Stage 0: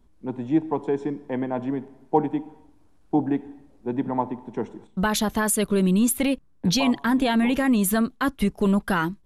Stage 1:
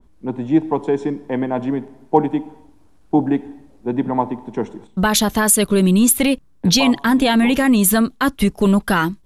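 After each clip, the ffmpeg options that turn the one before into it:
ffmpeg -i in.wav -af "adynamicequalizer=threshold=0.0126:dfrequency=2600:dqfactor=0.7:tfrequency=2600:tqfactor=0.7:attack=5:release=100:ratio=0.375:range=2:mode=boostabove:tftype=highshelf,volume=6dB" out.wav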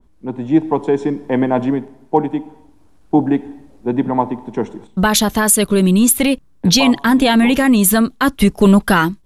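ffmpeg -i in.wav -af "dynaudnorm=framelen=180:gausssize=5:maxgain=11.5dB,volume=-1dB" out.wav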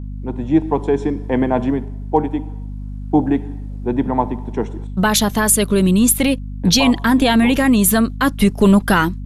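ffmpeg -i in.wav -af "aeval=exprs='val(0)+0.0562*(sin(2*PI*50*n/s)+sin(2*PI*2*50*n/s)/2+sin(2*PI*3*50*n/s)/3+sin(2*PI*4*50*n/s)/4+sin(2*PI*5*50*n/s)/5)':channel_layout=same,volume=-1.5dB" out.wav

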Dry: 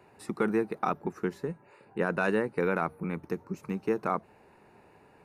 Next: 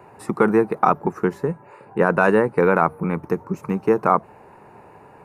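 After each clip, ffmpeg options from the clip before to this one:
ffmpeg -i in.wav -af "equalizer=frequency=125:width_type=o:width=1:gain=5,equalizer=frequency=500:width_type=o:width=1:gain=3,equalizer=frequency=1000:width_type=o:width=1:gain=7,equalizer=frequency=4000:width_type=o:width=1:gain=-6,volume=7.5dB" out.wav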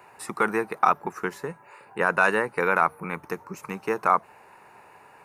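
ffmpeg -i in.wav -af "tiltshelf=frequency=830:gain=-9.5,volume=-4.5dB" out.wav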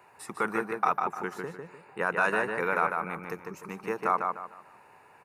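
ffmpeg -i in.wav -filter_complex "[0:a]asplit=2[link_01][link_02];[link_02]adelay=150,lowpass=frequency=4200:poles=1,volume=-4dB,asplit=2[link_03][link_04];[link_04]adelay=150,lowpass=frequency=4200:poles=1,volume=0.32,asplit=2[link_05][link_06];[link_06]adelay=150,lowpass=frequency=4200:poles=1,volume=0.32,asplit=2[link_07][link_08];[link_08]adelay=150,lowpass=frequency=4200:poles=1,volume=0.32[link_09];[link_01][link_03][link_05][link_07][link_09]amix=inputs=5:normalize=0,volume=-6dB" out.wav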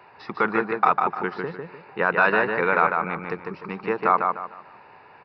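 ffmpeg -i in.wav -af "aresample=11025,aresample=44100,volume=7dB" out.wav

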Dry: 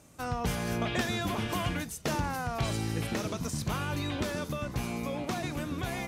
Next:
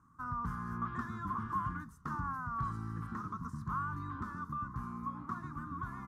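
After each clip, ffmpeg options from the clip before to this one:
ffmpeg -i in.wav -af "firequalizer=gain_entry='entry(230,0);entry(600,-28);entry(1100,14);entry(2400,-25);entry(5600,-19)':delay=0.05:min_phase=1,volume=-7.5dB" out.wav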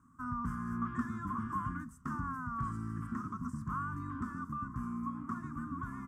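ffmpeg -i in.wav -af "equalizer=frequency=250:width_type=o:width=0.33:gain=10,equalizer=frequency=500:width_type=o:width=0.33:gain=-10,equalizer=frequency=800:width_type=o:width=0.33:gain=-10,equalizer=frequency=4000:width_type=o:width=0.33:gain=-12,equalizer=frequency=8000:width_type=o:width=0.33:gain=9" out.wav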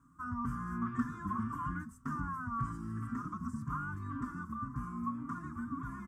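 ffmpeg -i in.wav -filter_complex "[0:a]asplit=2[link_01][link_02];[link_02]adelay=4.6,afreqshift=1.9[link_03];[link_01][link_03]amix=inputs=2:normalize=1,volume=3dB" out.wav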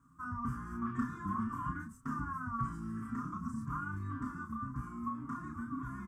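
ffmpeg -i in.wav -filter_complex "[0:a]asplit=2[link_01][link_02];[link_02]adelay=31,volume=-4.5dB[link_03];[link_01][link_03]amix=inputs=2:normalize=0,volume=-1.5dB" out.wav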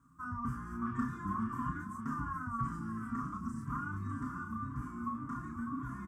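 ffmpeg -i in.wav -af "aecho=1:1:600:0.398" out.wav

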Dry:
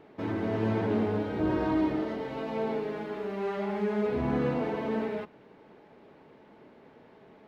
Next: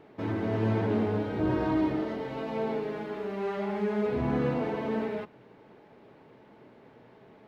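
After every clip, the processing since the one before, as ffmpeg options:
ffmpeg -i in.wav -af "equalizer=frequency=120:width=6.6:gain=8.5" out.wav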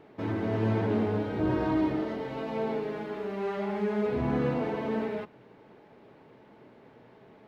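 ffmpeg -i in.wav -af anull out.wav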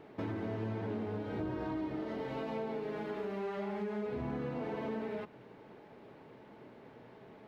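ffmpeg -i in.wav -af "acompressor=threshold=-35dB:ratio=6" out.wav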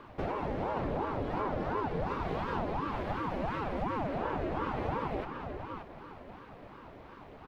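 ffmpeg -i in.wav -filter_complex "[0:a]asplit=2[link_01][link_02];[link_02]adelay=577,lowpass=frequency=4900:poles=1,volume=-6dB,asplit=2[link_03][link_04];[link_04]adelay=577,lowpass=frequency=4900:poles=1,volume=0.29,asplit=2[link_05][link_06];[link_06]adelay=577,lowpass=frequency=4900:poles=1,volume=0.29,asplit=2[link_07][link_08];[link_08]adelay=577,lowpass=frequency=4900:poles=1,volume=0.29[link_09];[link_01][link_03][link_05][link_07][link_09]amix=inputs=5:normalize=0,aeval=exprs='val(0)*sin(2*PI*440*n/s+440*0.7/2.8*sin(2*PI*2.8*n/s))':channel_layout=same,volume=6dB" out.wav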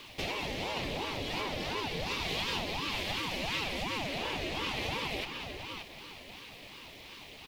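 ffmpeg -i in.wav -af "aexciter=amount=10.1:drive=7.4:freq=2200,volume=-4dB" out.wav

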